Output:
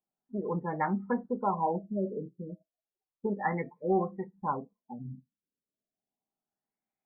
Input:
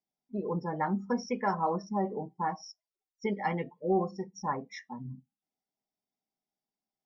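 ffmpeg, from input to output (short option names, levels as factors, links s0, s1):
-af "highshelf=f=2600:g=8.5,afftfilt=real='re*lt(b*sr/1024,580*pow(2600/580,0.5+0.5*sin(2*PI*0.32*pts/sr)))':imag='im*lt(b*sr/1024,580*pow(2600/580,0.5+0.5*sin(2*PI*0.32*pts/sr)))':win_size=1024:overlap=0.75"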